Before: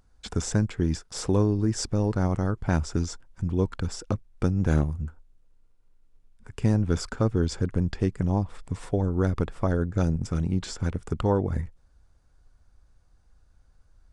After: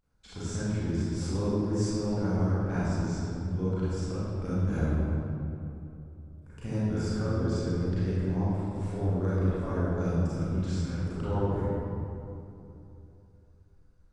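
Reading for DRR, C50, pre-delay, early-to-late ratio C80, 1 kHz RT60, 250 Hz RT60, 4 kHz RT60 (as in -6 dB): -12.0 dB, -7.0 dB, 30 ms, -3.5 dB, 2.7 s, 3.4 s, 1.6 s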